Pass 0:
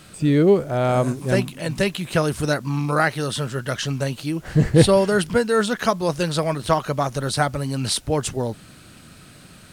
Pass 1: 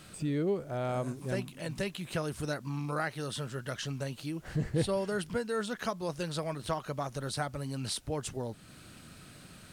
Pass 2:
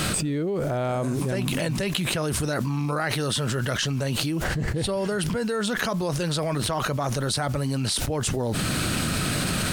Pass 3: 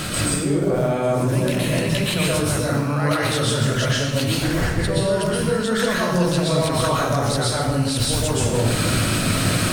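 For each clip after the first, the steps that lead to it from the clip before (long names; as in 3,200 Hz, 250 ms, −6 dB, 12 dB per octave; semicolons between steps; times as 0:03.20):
downward compressor 1.5 to 1, threshold −38 dBFS, peak gain reduction 11 dB; level −6 dB
envelope flattener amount 100%
convolution reverb RT60 1.1 s, pre-delay 107 ms, DRR −6 dB; level −1.5 dB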